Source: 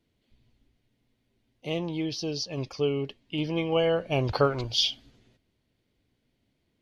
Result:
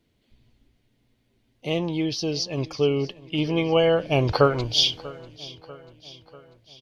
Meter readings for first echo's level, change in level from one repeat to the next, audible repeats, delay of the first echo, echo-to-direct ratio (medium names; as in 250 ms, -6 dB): -20.0 dB, -5.0 dB, 3, 642 ms, -18.5 dB